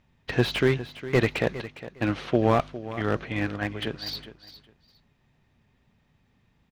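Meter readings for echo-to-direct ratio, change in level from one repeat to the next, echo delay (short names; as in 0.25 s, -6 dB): -14.5 dB, -14.0 dB, 0.408 s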